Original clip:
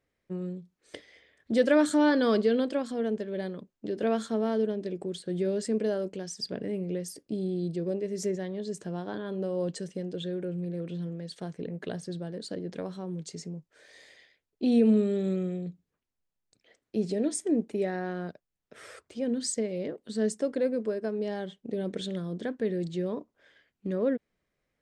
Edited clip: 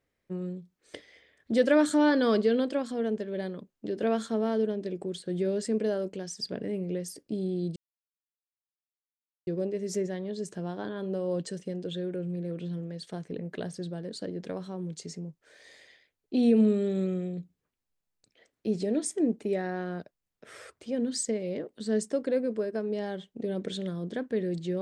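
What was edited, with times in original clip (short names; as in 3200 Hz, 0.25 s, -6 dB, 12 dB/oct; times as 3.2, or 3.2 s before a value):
7.76 insert silence 1.71 s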